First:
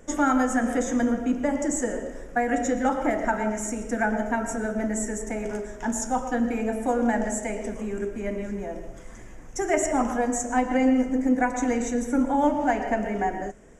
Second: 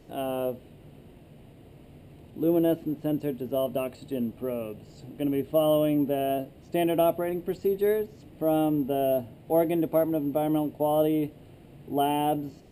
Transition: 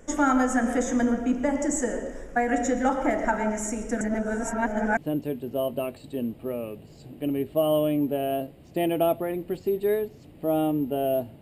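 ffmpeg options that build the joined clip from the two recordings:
ffmpeg -i cue0.wav -i cue1.wav -filter_complex "[0:a]apad=whole_dur=11.41,atrim=end=11.41,asplit=2[link_01][link_02];[link_01]atrim=end=4.012[link_03];[link_02]atrim=start=4.008:end=4.972,asetpts=PTS-STARTPTS,areverse[link_04];[1:a]atrim=start=2.948:end=9.39[link_05];[link_03][link_04]acrossfade=duration=0.004:curve1=hsin:curve2=hsin[link_06];[link_06][link_05]acrossfade=duration=0.004:curve1=hsin:curve2=hsin" out.wav

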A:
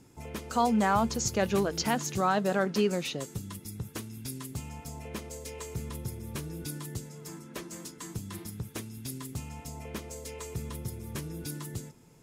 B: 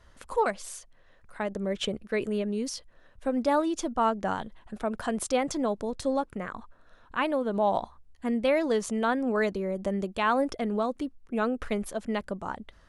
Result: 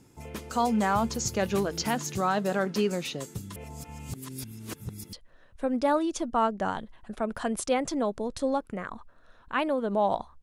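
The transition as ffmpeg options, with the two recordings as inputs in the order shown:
ffmpeg -i cue0.wav -i cue1.wav -filter_complex "[0:a]apad=whole_dur=10.42,atrim=end=10.42,asplit=2[link_01][link_02];[link_01]atrim=end=3.562[link_03];[link_02]atrim=start=3.558:end=5.132,asetpts=PTS-STARTPTS,areverse[link_04];[1:a]atrim=start=2.758:end=8.05[link_05];[link_03][link_04]acrossfade=duration=0.004:curve1=hsin:curve2=hsin[link_06];[link_06][link_05]acrossfade=duration=0.004:curve1=hsin:curve2=hsin" out.wav

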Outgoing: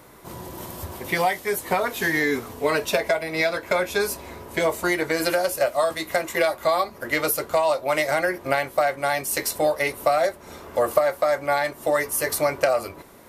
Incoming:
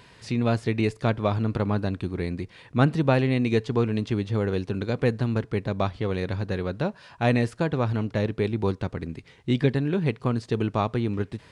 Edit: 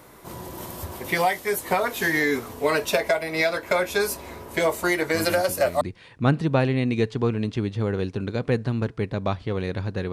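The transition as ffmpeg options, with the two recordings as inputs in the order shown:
ffmpeg -i cue0.wav -i cue1.wav -filter_complex "[1:a]asplit=2[link_01][link_02];[0:a]apad=whole_dur=10.12,atrim=end=10.12,atrim=end=5.812[link_03];[link_02]atrim=start=2.348:end=6.66[link_04];[link_01]atrim=start=1.68:end=2.35,asetpts=PTS-STARTPTS,volume=-8.5dB,afade=type=in:duration=0.004:curve=hsin,afade=type=out:start_time=0.666:duration=0.004:curve=hsin,adelay=5140[link_05];[link_03][link_04]acrossfade=duration=0.004:curve1=hsin:curve2=hsin[link_06];[link_06][link_05]amix=inputs=2:normalize=0" out.wav

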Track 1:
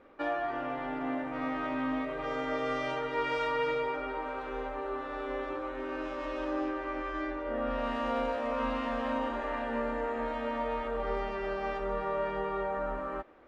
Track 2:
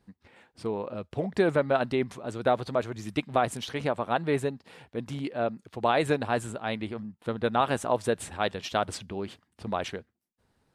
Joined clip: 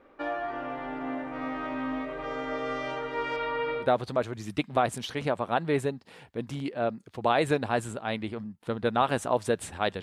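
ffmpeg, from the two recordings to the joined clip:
ffmpeg -i cue0.wav -i cue1.wav -filter_complex "[0:a]asettb=1/sr,asplit=3[link_01][link_02][link_03];[link_01]atrim=end=3.364[link_04];[link_02]atrim=start=3.36:end=3.89,asetpts=PTS-STARTPTS,afade=type=in:duration=0.004:curve=qsin,afade=type=out:start_time=0.526:duration=0.004:curve=qsin,lowpass=frequency=4200:width=0.5412,lowpass=frequency=4200:width=1.3066[link_05];[link_03]atrim=start=3.886[link_06];[link_04][link_05]acrossfade=duration=0.004:curve1=hsin:curve2=qsin[link_07];[link_07][link_06]acrossfade=duration=0.004:curve1=qsin:curve2=hsin,apad=whole_dur=10.02,atrim=end=10.02,atrim=end=3.89,asetpts=PTS-STARTPTS[link_08];[1:a]atrim=start=2.36:end=8.61,asetpts=PTS-STARTPTS[link_09];[link_08][link_09]acrossfade=duration=0.12:curve1=tri:curve2=tri" out.wav

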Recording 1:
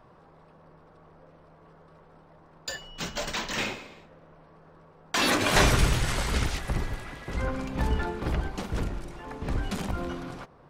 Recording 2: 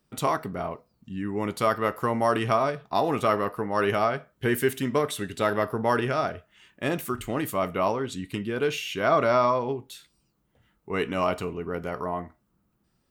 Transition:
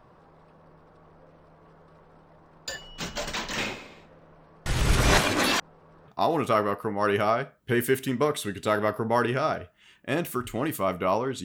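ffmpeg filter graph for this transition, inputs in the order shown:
ffmpeg -i cue0.wav -i cue1.wav -filter_complex "[0:a]apad=whole_dur=11.44,atrim=end=11.44,asplit=2[link_01][link_02];[link_01]atrim=end=4.662[link_03];[link_02]atrim=start=4.658:end=6.082,asetpts=PTS-STARTPTS,areverse[link_04];[1:a]atrim=start=2.818:end=8.18[link_05];[link_03][link_04]acrossfade=duration=0.004:curve1=hsin:curve2=hsin[link_06];[link_06][link_05]acrossfade=duration=0.004:curve1=hsin:curve2=hsin" out.wav

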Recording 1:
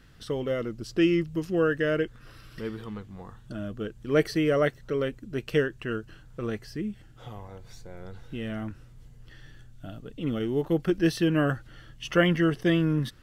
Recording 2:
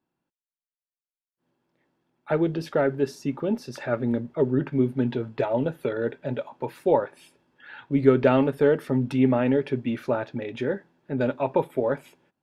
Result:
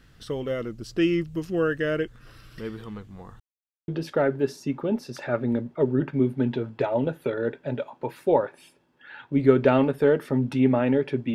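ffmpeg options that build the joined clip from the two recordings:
ffmpeg -i cue0.wav -i cue1.wav -filter_complex "[0:a]apad=whole_dur=11.34,atrim=end=11.34,asplit=2[link_01][link_02];[link_01]atrim=end=3.4,asetpts=PTS-STARTPTS,afade=type=out:start_time=3.396:duration=0.004:curve=hsin[link_03];[link_02]atrim=start=3.4:end=3.88,asetpts=PTS-STARTPTS,volume=0[link_04];[1:a]atrim=start=2.47:end=9.93,asetpts=PTS-STARTPTS,afade=type=in:duration=0.004:curve=hsin[link_05];[link_03][link_04][link_05]concat=n=3:v=0:a=1" out.wav

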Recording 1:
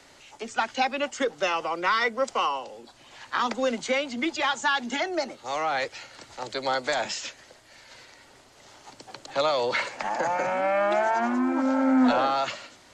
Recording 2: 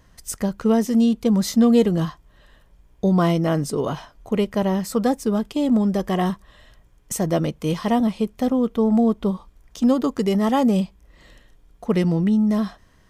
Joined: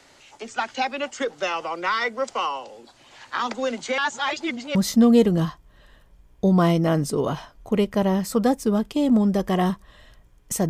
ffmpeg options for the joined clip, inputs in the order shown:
ffmpeg -i cue0.wav -i cue1.wav -filter_complex "[0:a]apad=whole_dur=10.69,atrim=end=10.69,asplit=2[link_01][link_02];[link_01]atrim=end=3.982[link_03];[link_02]atrim=start=3.978:end=4.752,asetpts=PTS-STARTPTS,areverse[link_04];[1:a]atrim=start=1.348:end=7.29[link_05];[link_03][link_04]acrossfade=duration=0.004:curve1=hsin:curve2=hsin[link_06];[link_06][link_05]acrossfade=duration=0.004:curve1=hsin:curve2=hsin" out.wav

